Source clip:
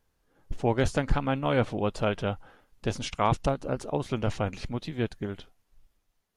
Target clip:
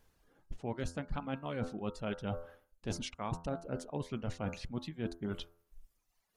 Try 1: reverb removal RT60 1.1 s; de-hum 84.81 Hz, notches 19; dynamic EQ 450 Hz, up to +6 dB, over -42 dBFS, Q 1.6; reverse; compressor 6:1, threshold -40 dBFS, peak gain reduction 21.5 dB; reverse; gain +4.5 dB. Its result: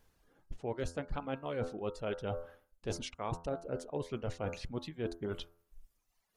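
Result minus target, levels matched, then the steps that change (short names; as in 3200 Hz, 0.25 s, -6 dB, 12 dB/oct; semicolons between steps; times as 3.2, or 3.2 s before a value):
500 Hz band +3.0 dB
change: dynamic EQ 200 Hz, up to +6 dB, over -42 dBFS, Q 1.6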